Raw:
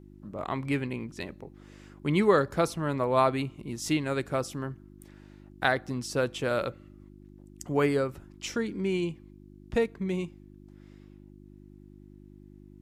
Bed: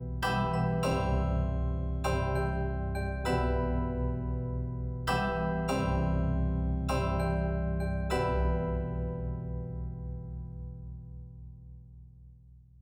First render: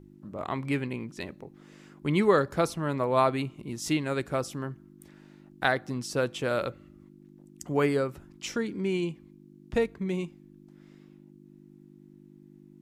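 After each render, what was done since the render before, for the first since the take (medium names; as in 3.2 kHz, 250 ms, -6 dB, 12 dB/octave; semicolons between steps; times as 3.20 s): de-hum 50 Hz, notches 2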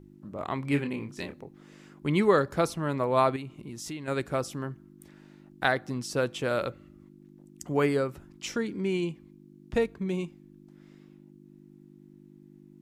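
0.69–1.41 s: doubling 28 ms -6 dB; 3.36–4.08 s: compression 3:1, threshold -37 dBFS; 9.81–10.25 s: band-stop 2 kHz, Q 9.9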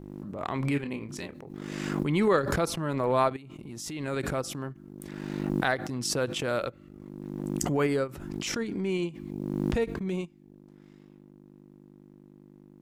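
transient shaper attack -6 dB, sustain -10 dB; swell ahead of each attack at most 29 dB/s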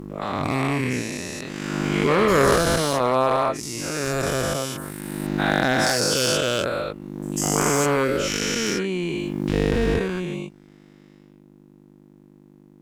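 every event in the spectrogram widened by 480 ms; one-sided clip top -15 dBFS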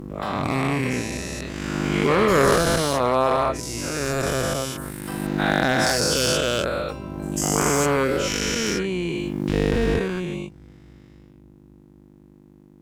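add bed -7.5 dB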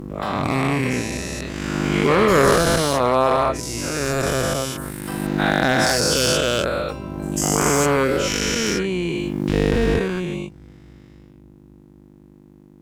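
trim +2.5 dB; peak limiter -2 dBFS, peak gain reduction 1 dB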